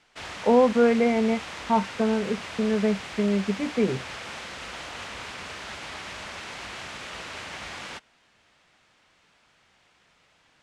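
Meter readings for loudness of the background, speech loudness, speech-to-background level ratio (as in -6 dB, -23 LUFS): -36.5 LUFS, -24.0 LUFS, 12.5 dB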